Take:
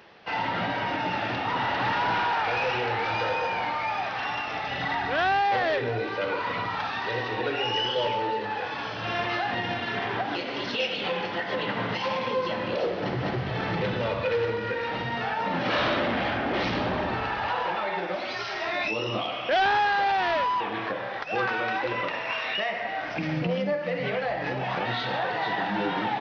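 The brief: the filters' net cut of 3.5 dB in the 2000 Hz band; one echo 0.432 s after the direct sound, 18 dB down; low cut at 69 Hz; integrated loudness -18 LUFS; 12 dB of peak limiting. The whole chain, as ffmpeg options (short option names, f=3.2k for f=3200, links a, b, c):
-af "highpass=69,equalizer=f=2k:t=o:g=-4.5,alimiter=level_in=4.5dB:limit=-24dB:level=0:latency=1,volume=-4.5dB,aecho=1:1:432:0.126,volume=17.5dB"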